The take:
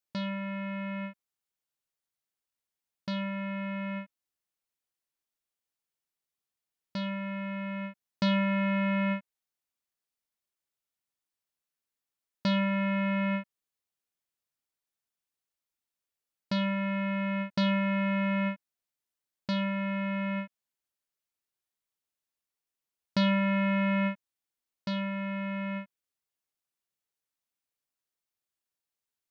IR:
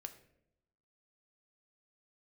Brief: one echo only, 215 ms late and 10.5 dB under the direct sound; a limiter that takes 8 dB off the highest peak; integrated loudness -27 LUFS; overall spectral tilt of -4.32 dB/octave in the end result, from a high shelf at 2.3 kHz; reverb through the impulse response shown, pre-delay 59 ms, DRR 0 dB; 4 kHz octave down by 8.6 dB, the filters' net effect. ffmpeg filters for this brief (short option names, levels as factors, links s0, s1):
-filter_complex "[0:a]highshelf=f=2300:g=-5.5,equalizer=f=4000:t=o:g=-7,alimiter=level_in=2:limit=0.0631:level=0:latency=1,volume=0.501,aecho=1:1:215:0.299,asplit=2[s0][s1];[1:a]atrim=start_sample=2205,adelay=59[s2];[s1][s2]afir=irnorm=-1:irlink=0,volume=1.68[s3];[s0][s3]amix=inputs=2:normalize=0,volume=3.55"